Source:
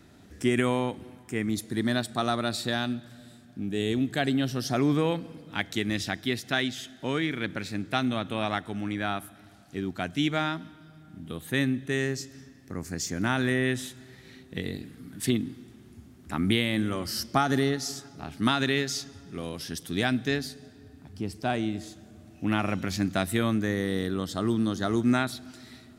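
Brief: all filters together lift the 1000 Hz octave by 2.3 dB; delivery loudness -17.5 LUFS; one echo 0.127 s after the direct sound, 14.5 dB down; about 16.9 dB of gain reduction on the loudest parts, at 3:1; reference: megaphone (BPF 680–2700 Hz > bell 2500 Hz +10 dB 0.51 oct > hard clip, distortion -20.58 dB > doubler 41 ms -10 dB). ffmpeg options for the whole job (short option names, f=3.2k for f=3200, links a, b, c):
-filter_complex "[0:a]equalizer=f=1k:t=o:g=4.5,acompressor=threshold=-42dB:ratio=3,highpass=680,lowpass=2.7k,equalizer=f=2.5k:t=o:w=0.51:g=10,aecho=1:1:127:0.188,asoftclip=type=hard:threshold=-30.5dB,asplit=2[a][b];[b]adelay=41,volume=-10dB[c];[a][c]amix=inputs=2:normalize=0,volume=27.5dB"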